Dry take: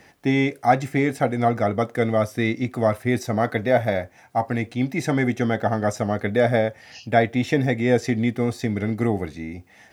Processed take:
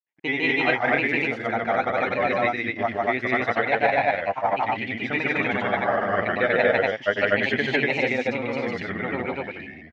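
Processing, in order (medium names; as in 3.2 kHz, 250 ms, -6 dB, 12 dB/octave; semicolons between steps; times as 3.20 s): gate -46 dBFS, range -38 dB; low-pass 2.8 kHz 24 dB/octave; tilt EQ +4.5 dB/octave; granulator, pitch spread up and down by 3 st; loudspeakers at several distances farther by 52 m -1 dB, 83 m 0 dB; trim -1 dB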